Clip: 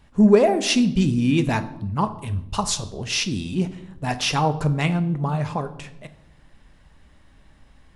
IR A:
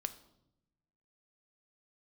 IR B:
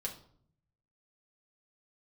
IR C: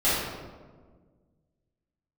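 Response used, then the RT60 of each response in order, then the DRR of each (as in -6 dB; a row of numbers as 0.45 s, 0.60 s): A; 0.85 s, 0.60 s, 1.5 s; 9.5 dB, -1.5 dB, -13.0 dB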